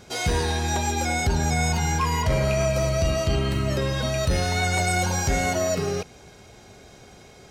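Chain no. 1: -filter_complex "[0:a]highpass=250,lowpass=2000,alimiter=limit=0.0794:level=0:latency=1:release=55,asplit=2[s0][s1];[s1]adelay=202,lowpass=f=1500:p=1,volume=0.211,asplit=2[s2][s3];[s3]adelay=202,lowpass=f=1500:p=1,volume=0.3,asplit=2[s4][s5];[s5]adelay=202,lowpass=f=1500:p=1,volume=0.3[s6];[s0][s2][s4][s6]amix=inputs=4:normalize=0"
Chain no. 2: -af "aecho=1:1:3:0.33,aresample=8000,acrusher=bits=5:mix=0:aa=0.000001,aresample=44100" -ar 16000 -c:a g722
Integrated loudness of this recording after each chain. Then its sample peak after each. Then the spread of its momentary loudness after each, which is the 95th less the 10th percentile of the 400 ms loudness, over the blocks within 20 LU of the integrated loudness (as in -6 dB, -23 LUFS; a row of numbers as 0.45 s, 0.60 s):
-30.0 LUFS, -24.0 LUFS; -20.5 dBFS, -11.5 dBFS; 2 LU, 4 LU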